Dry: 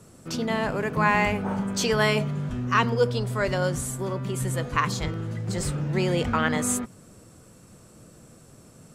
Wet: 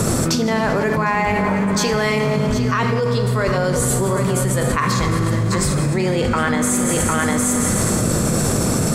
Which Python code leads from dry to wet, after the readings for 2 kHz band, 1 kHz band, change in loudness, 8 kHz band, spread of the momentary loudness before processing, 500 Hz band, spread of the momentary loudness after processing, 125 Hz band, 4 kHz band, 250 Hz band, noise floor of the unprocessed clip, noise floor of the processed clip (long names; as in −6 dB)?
+5.5 dB, +6.5 dB, +7.5 dB, +13.0 dB, 8 LU, +8.0 dB, 1 LU, +9.0 dB, +6.5 dB, +10.0 dB, −52 dBFS, −19 dBFS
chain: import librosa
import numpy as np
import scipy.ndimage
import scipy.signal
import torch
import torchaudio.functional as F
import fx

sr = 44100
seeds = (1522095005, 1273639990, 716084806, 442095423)

y = fx.peak_eq(x, sr, hz=2900.0, db=-6.0, octaves=0.27)
y = y * (1.0 - 0.63 / 2.0 + 0.63 / 2.0 * np.cos(2.0 * np.pi * 9.2 * (np.arange(len(y)) / sr)))
y = y + 10.0 ** (-13.5 / 20.0) * np.pad(y, (int(755 * sr / 1000.0), 0))[:len(y)]
y = fx.rev_schroeder(y, sr, rt60_s=1.8, comb_ms=29, drr_db=7.5)
y = fx.env_flatten(y, sr, amount_pct=100)